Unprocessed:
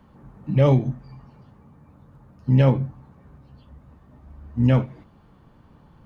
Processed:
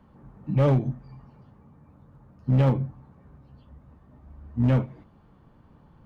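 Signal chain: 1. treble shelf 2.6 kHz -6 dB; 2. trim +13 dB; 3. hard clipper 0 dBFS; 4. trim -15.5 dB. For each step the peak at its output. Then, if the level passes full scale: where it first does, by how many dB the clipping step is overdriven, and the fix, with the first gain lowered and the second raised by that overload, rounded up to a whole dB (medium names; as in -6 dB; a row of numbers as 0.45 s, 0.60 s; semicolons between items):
-8.0 dBFS, +5.0 dBFS, 0.0 dBFS, -15.5 dBFS; step 2, 5.0 dB; step 2 +8 dB, step 4 -10.5 dB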